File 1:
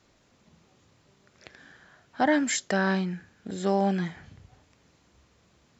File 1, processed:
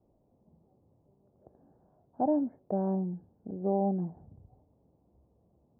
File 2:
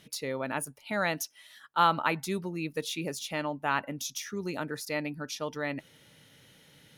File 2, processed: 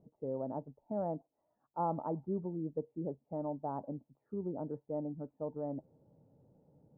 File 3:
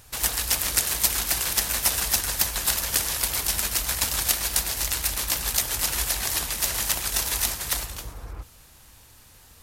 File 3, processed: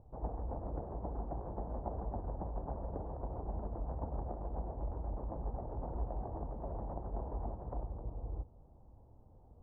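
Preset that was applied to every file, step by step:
steep low-pass 820 Hz 36 dB/octave; trim -3.5 dB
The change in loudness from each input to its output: -5.0 LU, -8.0 LU, -19.5 LU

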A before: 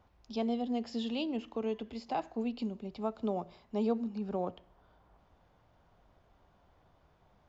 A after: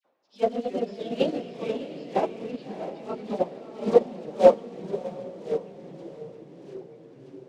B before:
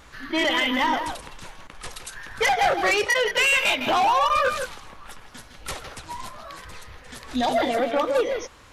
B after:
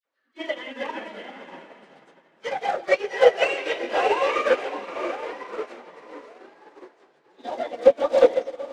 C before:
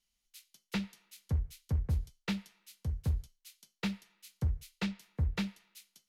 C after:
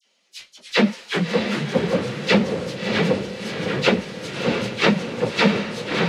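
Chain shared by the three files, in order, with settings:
phase randomisation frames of 50 ms; high-pass 240 Hz 24 dB/octave; peaking EQ 540 Hz +10.5 dB 0.41 oct; short-mantissa float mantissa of 2-bit; phase dispersion lows, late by 52 ms, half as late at 2 kHz; ever faster or slower copies 225 ms, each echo -3 st, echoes 3, each echo -6 dB; distance through air 110 m; echo that smears into a reverb 648 ms, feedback 43%, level -5 dB; upward expansion 2.5:1, over -34 dBFS; peak normalisation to -2 dBFS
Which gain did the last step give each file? +14.5 dB, +2.5 dB, +22.0 dB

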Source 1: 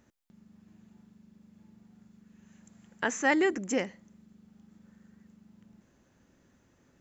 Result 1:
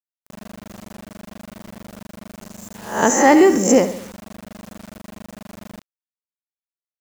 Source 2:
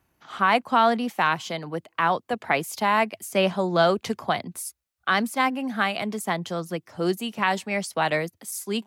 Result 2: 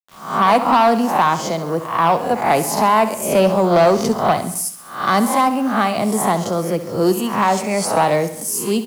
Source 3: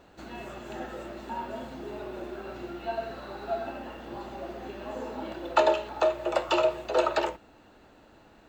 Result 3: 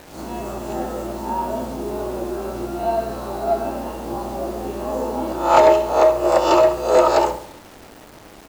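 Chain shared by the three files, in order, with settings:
reverse spectral sustain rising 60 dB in 0.49 s; high-order bell 2.4 kHz -10 dB; Chebyshev shaper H 5 -18 dB, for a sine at -7.5 dBFS; on a send: feedback delay 67 ms, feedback 52%, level -12.5 dB; on the sum: word length cut 8-bit, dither none; peak normalisation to -2 dBFS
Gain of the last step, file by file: +10.5 dB, +5.0 dB, +6.0 dB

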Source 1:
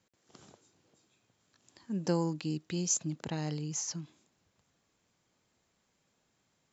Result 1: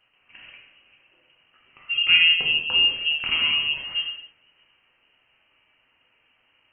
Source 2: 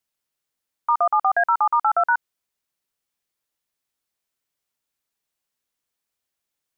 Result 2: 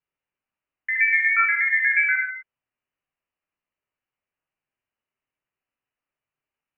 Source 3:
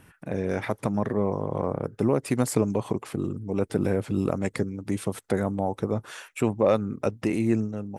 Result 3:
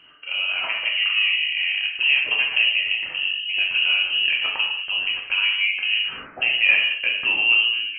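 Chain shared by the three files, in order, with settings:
frequency inversion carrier 3 kHz; gated-style reverb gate 280 ms falling, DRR -2.5 dB; normalise loudness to -19 LUFS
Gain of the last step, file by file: +8.0 dB, -5.0 dB, 0.0 dB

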